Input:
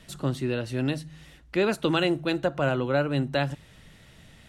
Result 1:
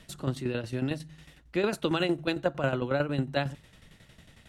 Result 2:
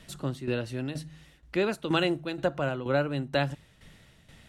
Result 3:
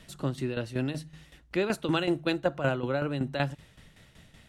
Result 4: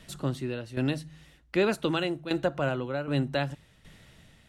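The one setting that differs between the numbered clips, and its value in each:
shaped tremolo, speed: 11, 2.1, 5.3, 1.3 Hertz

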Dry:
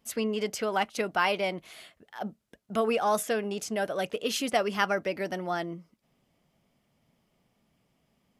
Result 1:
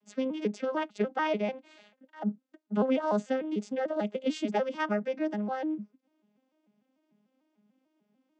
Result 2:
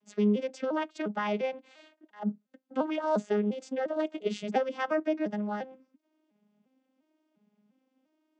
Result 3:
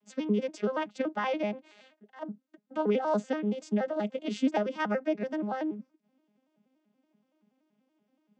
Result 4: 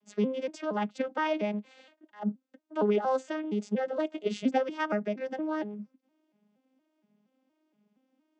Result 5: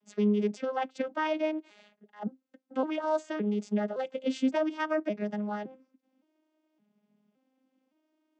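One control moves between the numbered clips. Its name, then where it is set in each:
vocoder with an arpeggio as carrier, a note every: 148, 350, 95, 234, 565 milliseconds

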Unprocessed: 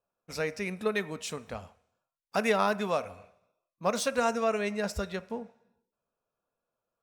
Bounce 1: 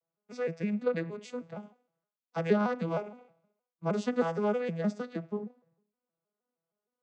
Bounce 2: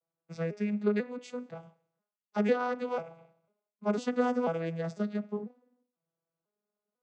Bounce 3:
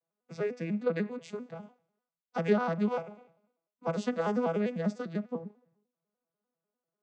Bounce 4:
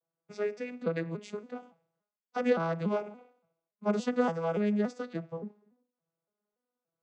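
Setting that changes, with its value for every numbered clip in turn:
vocoder with an arpeggio as carrier, a note every: 156, 496, 99, 285 milliseconds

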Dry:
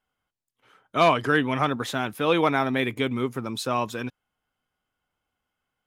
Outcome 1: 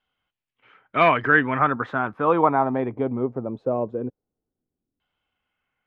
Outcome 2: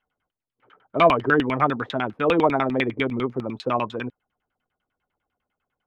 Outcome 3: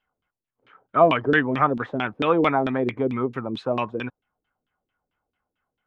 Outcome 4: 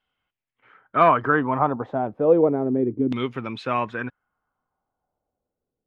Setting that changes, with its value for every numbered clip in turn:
auto-filter low-pass, speed: 0.2, 10, 4.5, 0.32 Hertz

